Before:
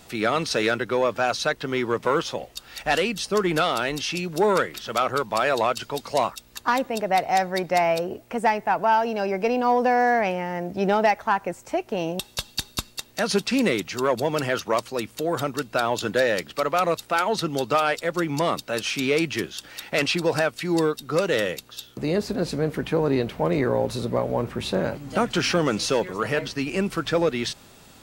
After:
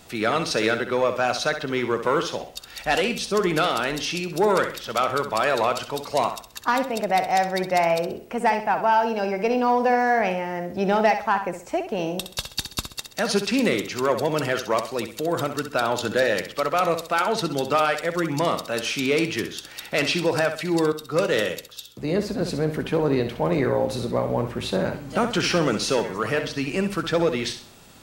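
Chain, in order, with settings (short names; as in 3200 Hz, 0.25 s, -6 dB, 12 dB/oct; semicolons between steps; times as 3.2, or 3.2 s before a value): flutter echo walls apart 11.1 m, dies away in 0.42 s; 20.92–22.41 three-band expander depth 40%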